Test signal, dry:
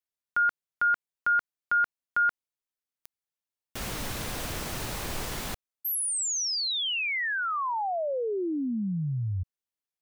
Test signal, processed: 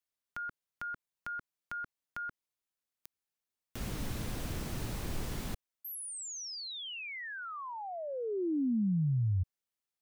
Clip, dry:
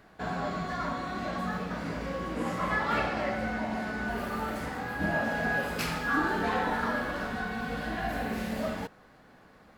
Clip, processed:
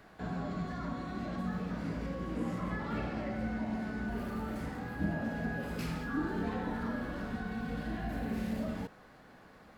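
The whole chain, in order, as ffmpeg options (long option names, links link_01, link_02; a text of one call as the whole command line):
ffmpeg -i in.wav -filter_complex "[0:a]acrossover=split=360[link_01][link_02];[link_02]acompressor=threshold=-53dB:ratio=2:attack=3.5:release=27:knee=2.83:detection=peak[link_03];[link_01][link_03]amix=inputs=2:normalize=0" out.wav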